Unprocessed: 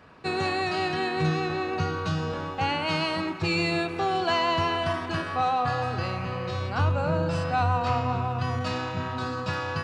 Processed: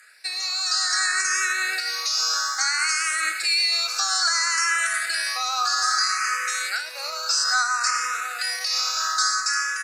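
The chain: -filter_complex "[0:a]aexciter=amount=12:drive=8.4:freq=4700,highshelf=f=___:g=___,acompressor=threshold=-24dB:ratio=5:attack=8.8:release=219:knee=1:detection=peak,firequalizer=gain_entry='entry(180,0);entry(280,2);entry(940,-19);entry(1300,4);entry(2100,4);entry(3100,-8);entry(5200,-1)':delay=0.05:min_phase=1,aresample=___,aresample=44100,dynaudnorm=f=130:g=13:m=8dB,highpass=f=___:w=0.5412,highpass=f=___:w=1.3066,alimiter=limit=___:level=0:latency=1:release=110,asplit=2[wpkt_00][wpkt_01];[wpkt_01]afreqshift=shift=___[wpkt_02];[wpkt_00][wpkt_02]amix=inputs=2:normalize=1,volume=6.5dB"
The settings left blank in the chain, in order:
7400, -8, 32000, 900, 900, -16dB, 0.6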